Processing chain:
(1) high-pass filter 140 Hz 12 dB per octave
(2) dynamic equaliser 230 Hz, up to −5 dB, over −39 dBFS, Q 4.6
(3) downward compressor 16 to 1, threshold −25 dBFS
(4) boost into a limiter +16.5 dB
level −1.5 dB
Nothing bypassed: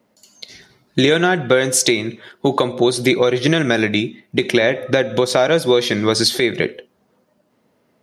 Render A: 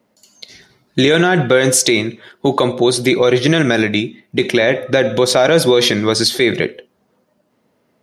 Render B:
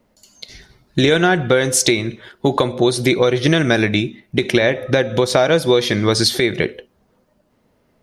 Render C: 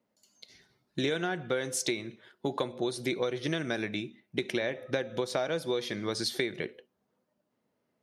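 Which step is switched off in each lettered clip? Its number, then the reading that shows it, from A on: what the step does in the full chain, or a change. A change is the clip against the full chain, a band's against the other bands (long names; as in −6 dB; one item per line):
3, average gain reduction 6.0 dB
1, 125 Hz band +3.5 dB
4, change in crest factor +7.5 dB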